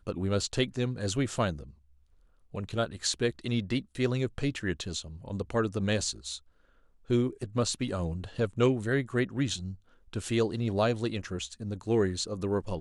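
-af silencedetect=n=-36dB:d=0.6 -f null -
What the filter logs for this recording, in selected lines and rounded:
silence_start: 1.63
silence_end: 2.54 | silence_duration: 0.91
silence_start: 6.37
silence_end: 7.10 | silence_duration: 0.73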